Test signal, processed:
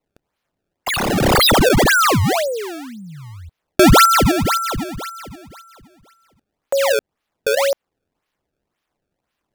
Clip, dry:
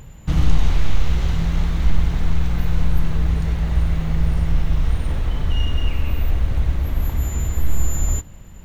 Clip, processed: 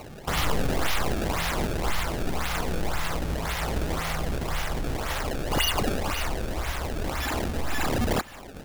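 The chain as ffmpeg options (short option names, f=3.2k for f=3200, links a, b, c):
-filter_complex "[0:a]aemphasis=mode=production:type=50fm,asplit=2[a][b];[b]acompressor=threshold=-28dB:ratio=6,volume=1dB[c];[a][c]amix=inputs=2:normalize=0,acrossover=split=600 5500:gain=0.0891 1 0.126[d][e][f];[d][e][f]amix=inputs=3:normalize=0,acrusher=samples=25:mix=1:aa=0.000001:lfo=1:lforange=40:lforate=1.9,volume=6dB"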